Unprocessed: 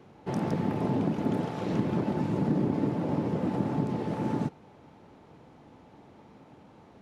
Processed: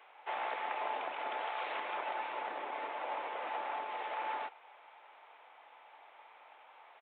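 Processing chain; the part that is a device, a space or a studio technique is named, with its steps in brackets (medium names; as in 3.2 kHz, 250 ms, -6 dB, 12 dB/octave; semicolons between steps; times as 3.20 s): musical greeting card (resampled via 8 kHz; high-pass 730 Hz 24 dB/octave; peaking EQ 2.3 kHz +5 dB 0.54 oct); trim +2.5 dB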